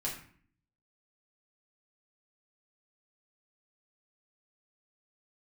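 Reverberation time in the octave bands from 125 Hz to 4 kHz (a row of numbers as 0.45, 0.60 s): 0.85, 0.75, 0.55, 0.50, 0.50, 0.40 s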